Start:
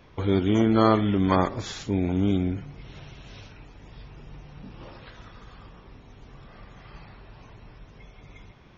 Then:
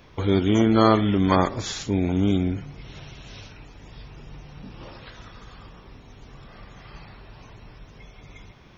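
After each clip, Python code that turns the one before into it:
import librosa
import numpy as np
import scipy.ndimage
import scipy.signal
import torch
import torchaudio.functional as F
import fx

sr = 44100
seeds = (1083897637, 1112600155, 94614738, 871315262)

y = fx.high_shelf(x, sr, hz=4600.0, db=7.5)
y = y * 10.0 ** (2.0 / 20.0)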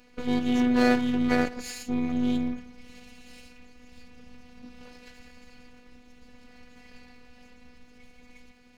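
y = fx.lower_of_two(x, sr, delay_ms=0.43)
y = fx.robotise(y, sr, hz=246.0)
y = y * 10.0 ** (-2.5 / 20.0)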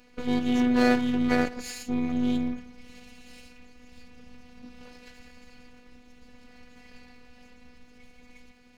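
y = x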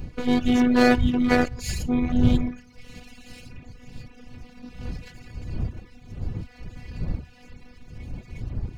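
y = fx.dmg_wind(x, sr, seeds[0], corner_hz=100.0, level_db=-35.0)
y = fx.dereverb_blind(y, sr, rt60_s=0.67)
y = y * 10.0 ** (5.5 / 20.0)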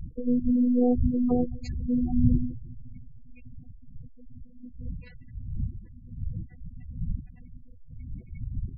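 y = fx.env_lowpass_down(x, sr, base_hz=530.0, full_db=-15.0)
y = fx.echo_bbd(y, sr, ms=151, stages=2048, feedback_pct=74, wet_db=-18)
y = fx.spec_gate(y, sr, threshold_db=-15, keep='strong')
y = y * 10.0 ** (-2.5 / 20.0)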